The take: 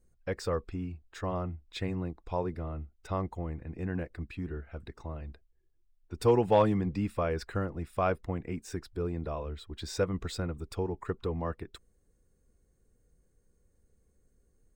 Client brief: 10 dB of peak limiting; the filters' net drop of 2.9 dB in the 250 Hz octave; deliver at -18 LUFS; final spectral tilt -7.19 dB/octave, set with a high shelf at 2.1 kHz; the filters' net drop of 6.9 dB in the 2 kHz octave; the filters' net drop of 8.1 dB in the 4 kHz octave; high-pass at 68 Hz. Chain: high-pass 68 Hz; peaking EQ 250 Hz -4 dB; peaking EQ 2 kHz -6.5 dB; treble shelf 2.1 kHz -4.5 dB; peaking EQ 4 kHz -4 dB; trim +20.5 dB; peak limiter -4 dBFS

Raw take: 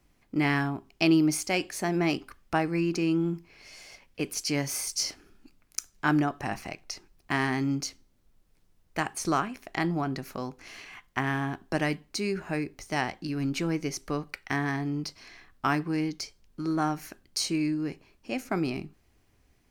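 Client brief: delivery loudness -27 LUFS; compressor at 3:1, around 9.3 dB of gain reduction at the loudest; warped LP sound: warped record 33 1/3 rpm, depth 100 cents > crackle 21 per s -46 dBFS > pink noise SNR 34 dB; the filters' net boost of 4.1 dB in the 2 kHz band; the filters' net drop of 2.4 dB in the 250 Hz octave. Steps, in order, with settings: peaking EQ 250 Hz -3.5 dB; peaking EQ 2 kHz +5 dB; compression 3:1, threshold -32 dBFS; warped record 33 1/3 rpm, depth 100 cents; crackle 21 per s -46 dBFS; pink noise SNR 34 dB; trim +9 dB

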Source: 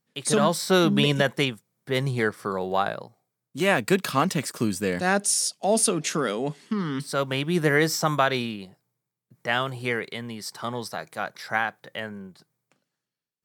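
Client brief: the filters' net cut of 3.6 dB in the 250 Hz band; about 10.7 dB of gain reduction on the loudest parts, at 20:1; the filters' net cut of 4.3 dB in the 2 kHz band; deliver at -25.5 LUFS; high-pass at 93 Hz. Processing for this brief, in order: high-pass 93 Hz; peaking EQ 250 Hz -5 dB; peaking EQ 2 kHz -5.5 dB; compression 20:1, threshold -28 dBFS; trim +8.5 dB

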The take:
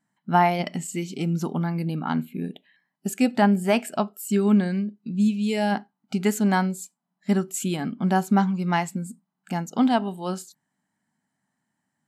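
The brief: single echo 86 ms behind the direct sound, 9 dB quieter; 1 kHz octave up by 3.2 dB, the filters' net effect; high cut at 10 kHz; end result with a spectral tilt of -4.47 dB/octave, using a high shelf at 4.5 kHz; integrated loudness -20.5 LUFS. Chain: low-pass 10 kHz; peaking EQ 1 kHz +4.5 dB; treble shelf 4.5 kHz -6.5 dB; delay 86 ms -9 dB; trim +2.5 dB

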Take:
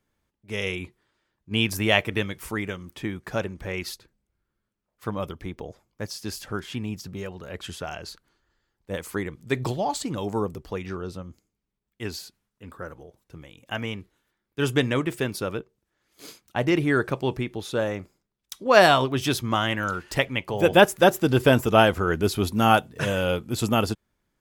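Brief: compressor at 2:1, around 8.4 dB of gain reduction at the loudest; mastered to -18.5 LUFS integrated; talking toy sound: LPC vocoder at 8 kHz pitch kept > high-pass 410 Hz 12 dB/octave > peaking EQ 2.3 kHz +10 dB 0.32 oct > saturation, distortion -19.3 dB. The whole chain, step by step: compression 2:1, threshold -26 dBFS; LPC vocoder at 8 kHz pitch kept; high-pass 410 Hz 12 dB/octave; peaking EQ 2.3 kHz +10 dB 0.32 oct; saturation -14 dBFS; trim +13.5 dB

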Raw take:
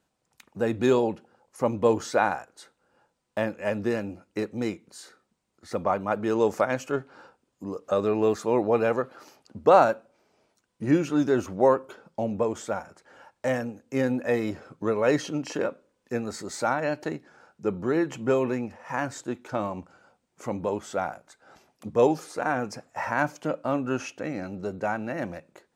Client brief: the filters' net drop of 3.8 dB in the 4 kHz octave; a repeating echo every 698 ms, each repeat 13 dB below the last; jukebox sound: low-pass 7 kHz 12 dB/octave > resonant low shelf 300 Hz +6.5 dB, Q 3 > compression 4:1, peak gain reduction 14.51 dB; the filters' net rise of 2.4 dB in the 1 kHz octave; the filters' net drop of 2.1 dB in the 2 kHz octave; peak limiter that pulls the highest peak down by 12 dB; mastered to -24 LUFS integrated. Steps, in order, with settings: peaking EQ 1 kHz +5.5 dB; peaking EQ 2 kHz -5 dB; peaking EQ 4 kHz -3 dB; peak limiter -15.5 dBFS; low-pass 7 kHz 12 dB/octave; resonant low shelf 300 Hz +6.5 dB, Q 3; feedback delay 698 ms, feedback 22%, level -13 dB; compression 4:1, threshold -31 dBFS; trim +11 dB

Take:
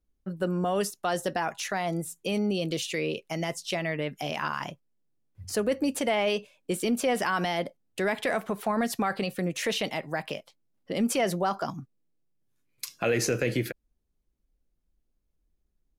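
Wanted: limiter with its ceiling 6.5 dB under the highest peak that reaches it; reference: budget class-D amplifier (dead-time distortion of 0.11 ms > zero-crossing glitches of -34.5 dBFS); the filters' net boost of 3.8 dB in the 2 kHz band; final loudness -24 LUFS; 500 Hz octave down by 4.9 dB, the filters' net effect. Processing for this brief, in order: peaking EQ 500 Hz -6.5 dB; peaking EQ 2 kHz +5 dB; peak limiter -18.5 dBFS; dead-time distortion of 0.11 ms; zero-crossing glitches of -34.5 dBFS; trim +7.5 dB

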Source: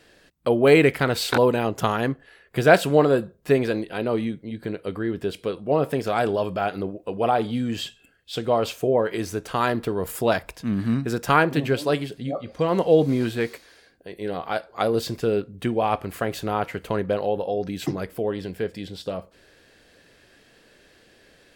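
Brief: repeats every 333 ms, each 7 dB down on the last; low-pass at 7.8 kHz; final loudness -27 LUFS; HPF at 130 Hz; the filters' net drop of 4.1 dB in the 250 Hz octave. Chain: high-pass 130 Hz; low-pass 7.8 kHz; peaking EQ 250 Hz -5 dB; feedback delay 333 ms, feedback 45%, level -7 dB; trim -2.5 dB

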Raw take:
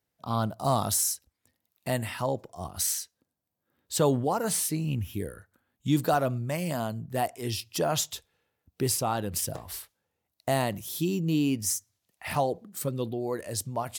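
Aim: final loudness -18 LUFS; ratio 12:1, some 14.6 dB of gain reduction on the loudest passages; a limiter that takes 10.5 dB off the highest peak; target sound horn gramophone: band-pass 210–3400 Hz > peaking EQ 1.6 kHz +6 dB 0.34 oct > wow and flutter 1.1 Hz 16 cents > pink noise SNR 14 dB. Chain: compression 12:1, threshold -34 dBFS; peak limiter -31.5 dBFS; band-pass 210–3400 Hz; peaking EQ 1.6 kHz +6 dB 0.34 oct; wow and flutter 1.1 Hz 16 cents; pink noise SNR 14 dB; trim +26.5 dB

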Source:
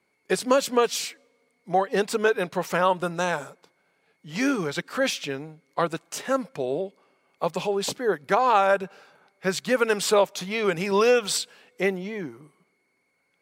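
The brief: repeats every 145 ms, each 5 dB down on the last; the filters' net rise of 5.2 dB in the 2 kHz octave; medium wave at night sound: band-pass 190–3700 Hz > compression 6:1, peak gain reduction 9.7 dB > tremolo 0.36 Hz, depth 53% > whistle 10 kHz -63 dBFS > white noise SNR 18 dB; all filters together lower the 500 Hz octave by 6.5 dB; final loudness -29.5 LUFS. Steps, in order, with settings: band-pass 190–3700 Hz; peaking EQ 500 Hz -8 dB; peaking EQ 2 kHz +8 dB; feedback delay 145 ms, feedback 56%, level -5 dB; compression 6:1, threshold -24 dBFS; tremolo 0.36 Hz, depth 53%; whistle 10 kHz -63 dBFS; white noise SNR 18 dB; trim +1.5 dB

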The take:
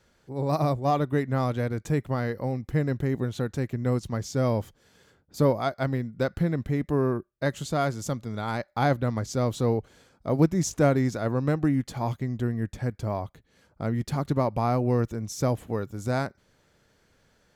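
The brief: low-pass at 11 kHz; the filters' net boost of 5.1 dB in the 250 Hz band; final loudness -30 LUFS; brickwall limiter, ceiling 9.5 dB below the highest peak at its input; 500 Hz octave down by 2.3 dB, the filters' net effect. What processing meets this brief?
low-pass 11 kHz; peaking EQ 250 Hz +7.5 dB; peaking EQ 500 Hz -5 dB; trim -2.5 dB; peak limiter -18 dBFS

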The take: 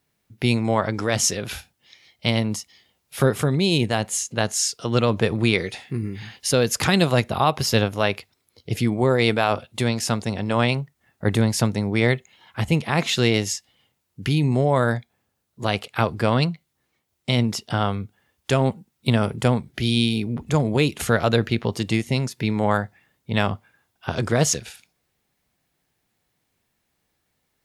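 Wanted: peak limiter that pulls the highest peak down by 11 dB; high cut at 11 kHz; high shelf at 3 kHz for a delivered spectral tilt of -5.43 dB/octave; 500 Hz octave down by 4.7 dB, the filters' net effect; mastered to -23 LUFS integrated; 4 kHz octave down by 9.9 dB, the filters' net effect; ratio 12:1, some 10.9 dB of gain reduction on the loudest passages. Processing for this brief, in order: low-pass 11 kHz; peaking EQ 500 Hz -5.5 dB; treble shelf 3 kHz -7.5 dB; peaking EQ 4 kHz -7 dB; compression 12:1, threshold -27 dBFS; trim +12 dB; peak limiter -10.5 dBFS

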